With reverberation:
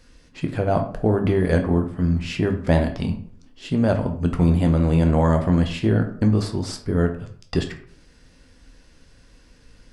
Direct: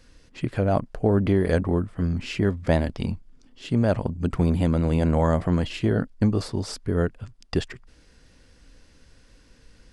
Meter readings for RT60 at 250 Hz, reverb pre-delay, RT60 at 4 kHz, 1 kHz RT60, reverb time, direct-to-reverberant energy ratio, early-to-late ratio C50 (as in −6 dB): 0.55 s, 9 ms, 0.35 s, 0.55 s, 0.55 s, 4.5 dB, 10.5 dB